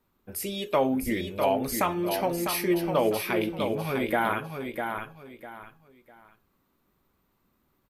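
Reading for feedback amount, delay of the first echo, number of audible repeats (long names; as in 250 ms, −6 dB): 27%, 651 ms, 3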